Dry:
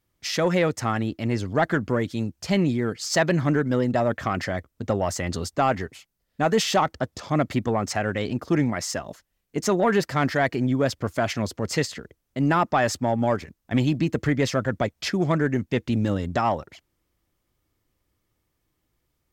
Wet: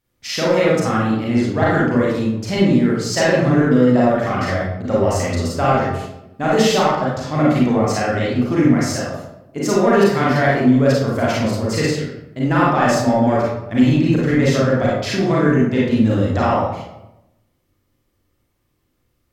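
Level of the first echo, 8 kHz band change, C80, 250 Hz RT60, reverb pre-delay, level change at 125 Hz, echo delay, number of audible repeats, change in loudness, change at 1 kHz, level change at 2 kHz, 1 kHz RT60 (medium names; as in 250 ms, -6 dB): no echo, +4.0 dB, 3.5 dB, 1.1 s, 32 ms, +7.0 dB, no echo, no echo, +7.5 dB, +6.0 dB, +6.0 dB, 0.85 s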